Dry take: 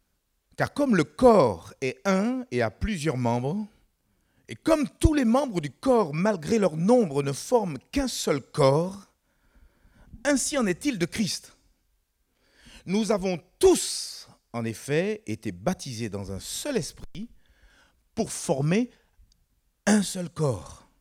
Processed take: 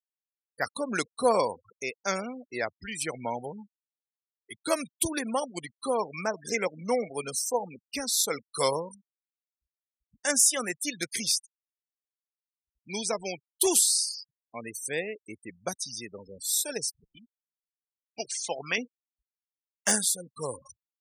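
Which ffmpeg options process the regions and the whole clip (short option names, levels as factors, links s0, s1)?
-filter_complex "[0:a]asettb=1/sr,asplit=3[s0][s1][s2];[s0]atrim=end=6.544[s3];[s1]atrim=start=6.54:end=7.1,asetpts=PTS-STARTPTS,afade=t=in:d=0.004:c=qsin,afade=t=out:st=0.556:d=0.004:c=qsin,highpass=110,lowpass=7000,equalizer=f=2100:w=5.7:g=14.5[s4];[s2]atrim=start=7.096[s5];[s3][s4]acrossfade=d=0.004:c1=hsin:c2=qsin[s6];[s6][s5]acrossfade=d=0.004:c1=qsin:c2=hsin,asettb=1/sr,asplit=3[s7][s8][s9];[s7]atrim=end=17.174[s10];[s8]atrim=start=17.17:end=18.78,asetpts=PTS-STARTPTS,afade=t=in:d=0.004:c=qsin,afade=t=out:st=1.606:d=0.004:c=qsin,lowpass=3700,tiltshelf=f=640:g=-8[s11];[s9]atrim=start=18.776[s12];[s10][s11]acrossfade=d=0.004:c1=hsin:c2=qsin[s13];[s13][s12]acrossfade=d=0.004:c1=qsin:c2=hsin,aemphasis=mode=production:type=50fm,afftfilt=real='re*gte(hypot(re,im),0.0316)':imag='im*gte(hypot(re,im),0.0316)':win_size=1024:overlap=0.75,highpass=f=820:p=1,volume=0.891"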